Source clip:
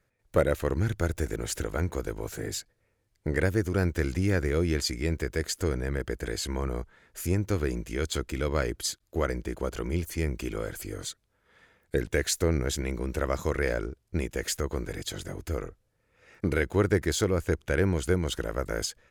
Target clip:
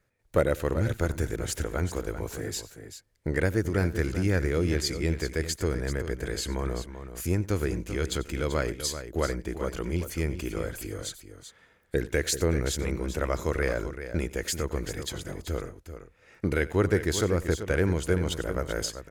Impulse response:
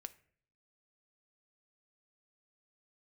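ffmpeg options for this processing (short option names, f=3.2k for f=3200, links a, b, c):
-af "aecho=1:1:91|387:0.112|0.299"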